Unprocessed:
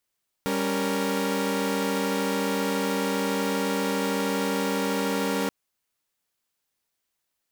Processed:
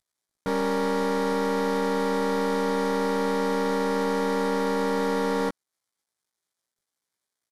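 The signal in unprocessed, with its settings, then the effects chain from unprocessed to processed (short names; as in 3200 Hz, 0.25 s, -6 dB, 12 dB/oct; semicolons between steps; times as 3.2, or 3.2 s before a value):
chord G3/C#4/A#4 saw, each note -26 dBFS 5.03 s
CVSD 64 kbps; bell 2700 Hz -12.5 dB 0.21 oct; doubler 17 ms -3 dB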